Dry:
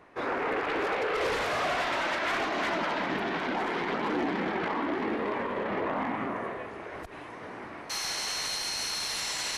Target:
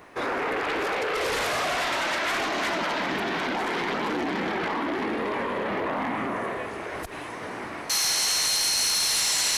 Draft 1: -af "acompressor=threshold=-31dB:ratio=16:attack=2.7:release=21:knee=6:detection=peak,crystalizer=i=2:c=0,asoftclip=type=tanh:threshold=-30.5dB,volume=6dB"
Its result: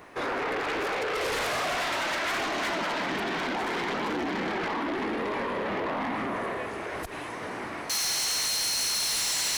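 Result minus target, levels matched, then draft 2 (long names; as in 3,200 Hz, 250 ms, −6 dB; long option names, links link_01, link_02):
soft clipping: distortion +18 dB
-af "acompressor=threshold=-31dB:ratio=16:attack=2.7:release=21:knee=6:detection=peak,crystalizer=i=2:c=0,asoftclip=type=tanh:threshold=-18.5dB,volume=6dB"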